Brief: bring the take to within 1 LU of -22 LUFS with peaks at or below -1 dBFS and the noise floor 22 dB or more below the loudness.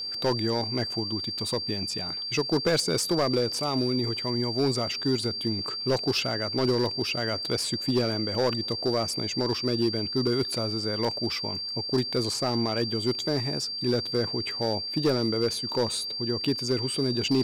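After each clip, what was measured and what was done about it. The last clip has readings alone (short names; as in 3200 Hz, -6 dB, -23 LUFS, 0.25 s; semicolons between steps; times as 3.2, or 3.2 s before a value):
clipped 1.1%; flat tops at -18.0 dBFS; steady tone 4700 Hz; tone level -31 dBFS; loudness -27.0 LUFS; peak -18.0 dBFS; loudness target -22.0 LUFS
-> clip repair -18 dBFS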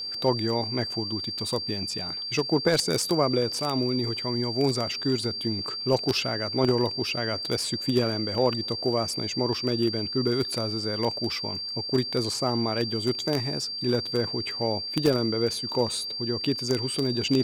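clipped 0.0%; steady tone 4700 Hz; tone level -31 dBFS
-> notch 4700 Hz, Q 30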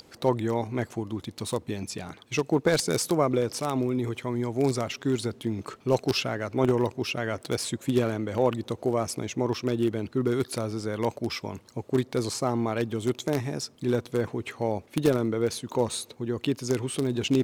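steady tone none; loudness -28.5 LUFS; peak -8.5 dBFS; loudness target -22.0 LUFS
-> gain +6.5 dB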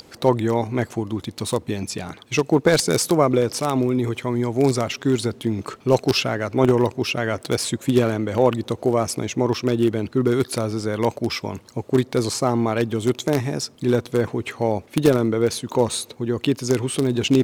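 loudness -22.0 LUFS; peak -2.0 dBFS; noise floor -49 dBFS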